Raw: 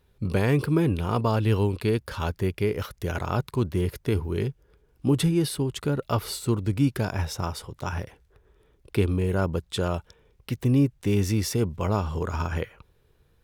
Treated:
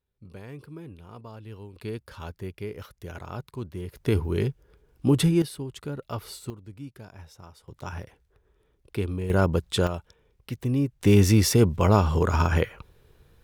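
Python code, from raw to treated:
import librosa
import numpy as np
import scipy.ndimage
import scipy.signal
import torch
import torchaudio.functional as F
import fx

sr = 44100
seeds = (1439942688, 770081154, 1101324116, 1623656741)

y = fx.gain(x, sr, db=fx.steps((0.0, -19.5), (1.76, -10.0), (3.97, 1.5), (5.42, -8.0), (6.5, -18.0), (7.68, -5.5), (9.3, 3.5), (9.87, -4.0), (11.01, 6.0)))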